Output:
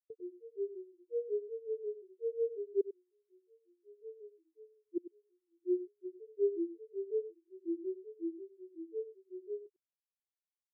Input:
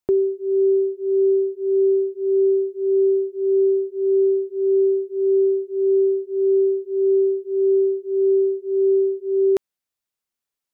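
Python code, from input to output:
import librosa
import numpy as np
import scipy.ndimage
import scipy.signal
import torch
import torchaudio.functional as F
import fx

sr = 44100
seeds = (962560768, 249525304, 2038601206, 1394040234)

p1 = fx.wiener(x, sr, points=15)
p2 = fx.doppler_pass(p1, sr, speed_mps=12, closest_m=1.6, pass_at_s=4.26)
p3 = fx.highpass(p2, sr, hz=85.0, slope=6)
p4 = fx.low_shelf(p3, sr, hz=120.0, db=9.5)
p5 = fx.gate_flip(p4, sr, shuts_db=-35.0, range_db=-32)
p6 = fx.granulator(p5, sr, seeds[0], grain_ms=157.0, per_s=5.5, spray_ms=100.0, spread_st=3)
p7 = p6 + fx.echo_single(p6, sr, ms=97, db=-9.0, dry=0)
p8 = fx.spectral_expand(p7, sr, expansion=1.5)
y = p8 * 10.0 ** (13.0 / 20.0)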